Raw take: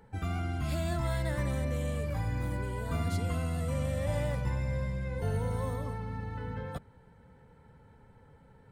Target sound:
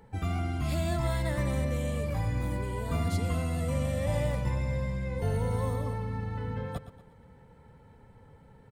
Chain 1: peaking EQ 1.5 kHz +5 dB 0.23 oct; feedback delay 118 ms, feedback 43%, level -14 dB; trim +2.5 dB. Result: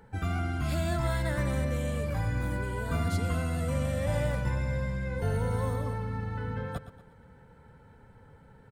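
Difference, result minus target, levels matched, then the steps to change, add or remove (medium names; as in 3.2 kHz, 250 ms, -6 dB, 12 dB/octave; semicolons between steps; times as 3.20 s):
2 kHz band +3.5 dB
change: peaking EQ 1.5 kHz -6 dB 0.23 oct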